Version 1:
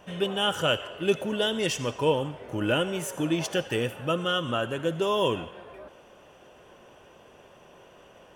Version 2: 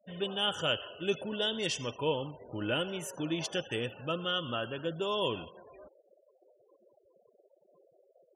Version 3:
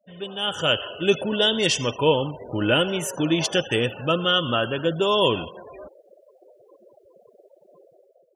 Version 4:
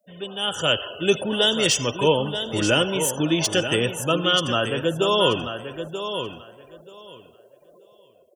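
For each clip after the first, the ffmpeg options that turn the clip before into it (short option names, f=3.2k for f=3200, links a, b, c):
-af "afftfilt=real='re*gte(hypot(re,im),0.01)':imag='im*gte(hypot(re,im),0.01)':win_size=1024:overlap=0.75,adynamicequalizer=threshold=0.00562:dfrequency=4100:dqfactor=1.3:tfrequency=4100:tqfactor=1.3:attack=5:release=100:ratio=0.375:range=3.5:mode=boostabove:tftype=bell,volume=-7.5dB"
-af "dynaudnorm=f=170:g=7:m=12dB"
-filter_complex "[0:a]aecho=1:1:933|1866|2799:0.355|0.0603|0.0103,acrossover=split=310|990|6600[a][b][c][d];[d]aeval=exprs='0.1*sin(PI/2*2*val(0)/0.1)':c=same[e];[a][b][c][e]amix=inputs=4:normalize=0"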